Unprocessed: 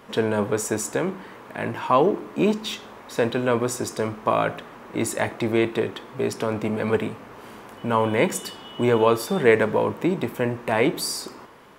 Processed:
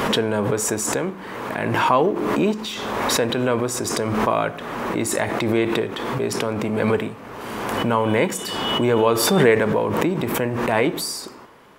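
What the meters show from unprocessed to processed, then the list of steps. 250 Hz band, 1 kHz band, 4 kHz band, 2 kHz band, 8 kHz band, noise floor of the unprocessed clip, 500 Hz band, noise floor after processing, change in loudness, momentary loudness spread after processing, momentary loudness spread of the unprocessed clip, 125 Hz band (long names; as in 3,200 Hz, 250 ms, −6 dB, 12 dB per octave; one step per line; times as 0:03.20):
+3.0 dB, +3.5 dB, +7.0 dB, +3.5 dB, +5.5 dB, −44 dBFS, +1.5 dB, −39 dBFS, +2.5 dB, 9 LU, 13 LU, +3.5 dB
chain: background raised ahead of every attack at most 28 dB per second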